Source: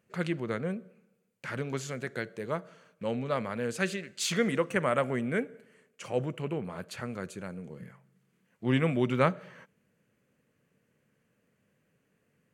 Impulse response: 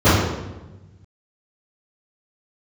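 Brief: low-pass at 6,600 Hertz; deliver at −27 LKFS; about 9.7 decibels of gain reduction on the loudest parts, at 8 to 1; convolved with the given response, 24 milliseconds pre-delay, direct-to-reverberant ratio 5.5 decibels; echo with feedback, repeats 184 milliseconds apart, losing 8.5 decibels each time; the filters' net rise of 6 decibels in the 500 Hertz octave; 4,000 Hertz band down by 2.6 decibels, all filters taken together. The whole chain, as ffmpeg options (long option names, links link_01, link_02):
-filter_complex "[0:a]lowpass=6600,equalizer=frequency=500:width_type=o:gain=7,equalizer=frequency=4000:width_type=o:gain=-3,acompressor=threshold=-26dB:ratio=8,aecho=1:1:184|368|552|736:0.376|0.143|0.0543|0.0206,asplit=2[link_01][link_02];[1:a]atrim=start_sample=2205,adelay=24[link_03];[link_02][link_03]afir=irnorm=-1:irlink=0,volume=-32dB[link_04];[link_01][link_04]amix=inputs=2:normalize=0,volume=3.5dB"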